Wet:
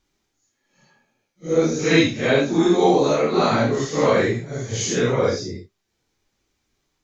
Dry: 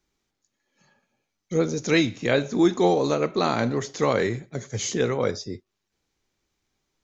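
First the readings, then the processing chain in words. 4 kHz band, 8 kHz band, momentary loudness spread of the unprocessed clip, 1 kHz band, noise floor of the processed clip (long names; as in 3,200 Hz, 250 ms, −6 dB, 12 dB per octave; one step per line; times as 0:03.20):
+4.5 dB, can't be measured, 12 LU, +4.5 dB, −75 dBFS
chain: random phases in long frames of 200 ms
level +4.5 dB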